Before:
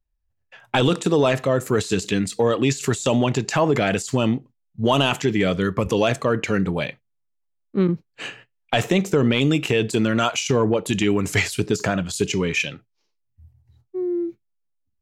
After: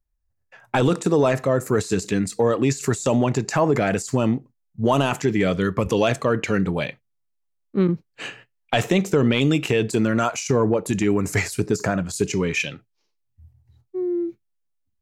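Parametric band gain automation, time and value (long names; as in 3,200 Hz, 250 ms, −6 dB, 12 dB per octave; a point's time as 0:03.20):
parametric band 3,200 Hz 0.66 octaves
0:05.16 −10 dB
0:05.61 −1.5 dB
0:09.62 −1.5 dB
0:10.24 −12.5 dB
0:12.11 −12.5 dB
0:12.72 −0.5 dB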